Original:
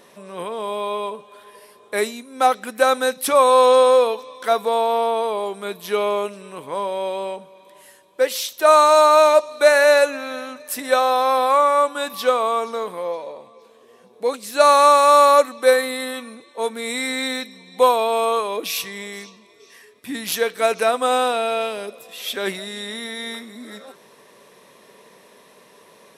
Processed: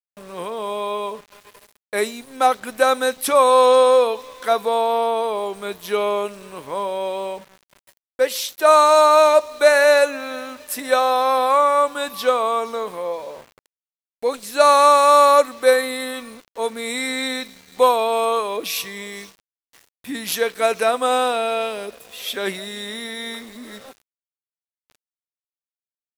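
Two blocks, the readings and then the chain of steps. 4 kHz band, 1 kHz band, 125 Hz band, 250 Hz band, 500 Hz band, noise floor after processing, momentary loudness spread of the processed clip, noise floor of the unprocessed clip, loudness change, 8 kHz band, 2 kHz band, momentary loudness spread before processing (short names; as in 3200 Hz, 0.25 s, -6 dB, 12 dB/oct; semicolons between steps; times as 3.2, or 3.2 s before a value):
0.0 dB, 0.0 dB, n/a, 0.0 dB, 0.0 dB, under -85 dBFS, 19 LU, -51 dBFS, 0.0 dB, 0.0 dB, 0.0 dB, 19 LU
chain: gate with hold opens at -37 dBFS; sample gate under -41 dBFS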